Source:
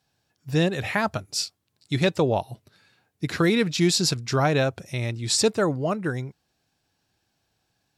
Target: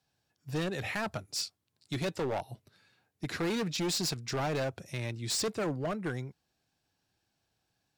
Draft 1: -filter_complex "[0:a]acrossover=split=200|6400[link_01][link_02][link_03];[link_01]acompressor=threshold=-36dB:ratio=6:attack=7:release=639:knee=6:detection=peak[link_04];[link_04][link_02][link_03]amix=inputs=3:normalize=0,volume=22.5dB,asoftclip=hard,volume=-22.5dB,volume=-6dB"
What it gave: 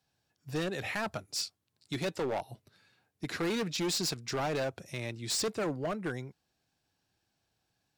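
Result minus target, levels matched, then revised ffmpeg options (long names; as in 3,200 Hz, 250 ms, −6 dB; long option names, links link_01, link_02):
downward compressor: peak gain reduction +6 dB
-filter_complex "[0:a]acrossover=split=200|6400[link_01][link_02][link_03];[link_01]acompressor=threshold=-28.5dB:ratio=6:attack=7:release=639:knee=6:detection=peak[link_04];[link_04][link_02][link_03]amix=inputs=3:normalize=0,volume=22.5dB,asoftclip=hard,volume=-22.5dB,volume=-6dB"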